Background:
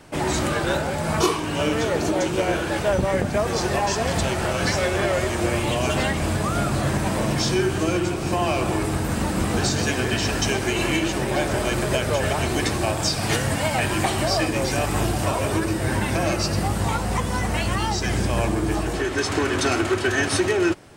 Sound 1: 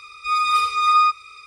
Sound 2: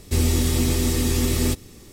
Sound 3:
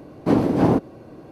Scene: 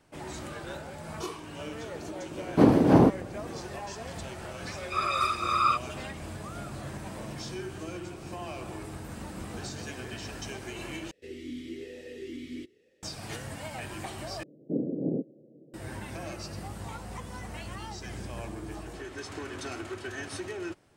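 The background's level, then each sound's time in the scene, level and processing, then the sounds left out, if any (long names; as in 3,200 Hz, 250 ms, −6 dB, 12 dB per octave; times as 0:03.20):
background −16.5 dB
0:02.31: mix in 3 −1 dB
0:04.66: mix in 1 −9 dB + random phases in short frames
0:11.11: overwrite with 2 −6 dB + formant filter swept between two vowels e-i 1.1 Hz
0:14.43: overwrite with 3 −11.5 dB + elliptic band-pass filter 140–540 Hz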